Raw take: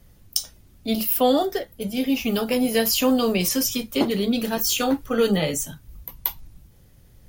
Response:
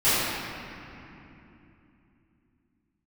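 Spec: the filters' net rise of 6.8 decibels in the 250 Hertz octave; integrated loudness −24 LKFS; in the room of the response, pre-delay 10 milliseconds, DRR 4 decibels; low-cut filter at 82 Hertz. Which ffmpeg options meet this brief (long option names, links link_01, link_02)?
-filter_complex "[0:a]highpass=82,equalizer=frequency=250:width_type=o:gain=7.5,asplit=2[link_01][link_02];[1:a]atrim=start_sample=2205,adelay=10[link_03];[link_02][link_03]afir=irnorm=-1:irlink=0,volume=-23dB[link_04];[link_01][link_04]amix=inputs=2:normalize=0,volume=-7dB"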